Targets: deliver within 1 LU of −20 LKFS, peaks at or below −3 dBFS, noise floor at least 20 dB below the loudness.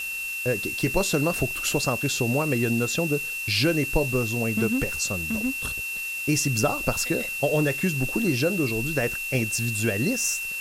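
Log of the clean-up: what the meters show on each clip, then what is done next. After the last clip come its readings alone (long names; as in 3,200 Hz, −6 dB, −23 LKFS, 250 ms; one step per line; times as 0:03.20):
interfering tone 2,700 Hz; level of the tone −29 dBFS; background noise floor −31 dBFS; target noise floor −45 dBFS; integrated loudness −24.5 LKFS; sample peak −8.0 dBFS; target loudness −20.0 LKFS
→ notch filter 2,700 Hz, Q 30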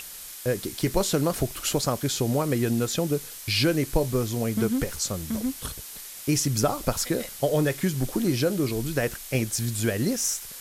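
interfering tone none found; background noise floor −41 dBFS; target noise floor −46 dBFS
→ noise reduction from a noise print 6 dB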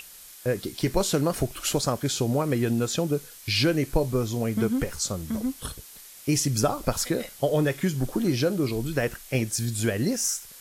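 background noise floor −47 dBFS; integrated loudness −26.5 LKFS; sample peak −8.5 dBFS; target loudness −20.0 LKFS
→ level +6.5 dB
brickwall limiter −3 dBFS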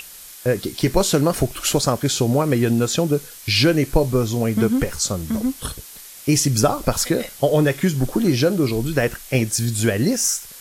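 integrated loudness −20.0 LKFS; sample peak −3.0 dBFS; background noise floor −40 dBFS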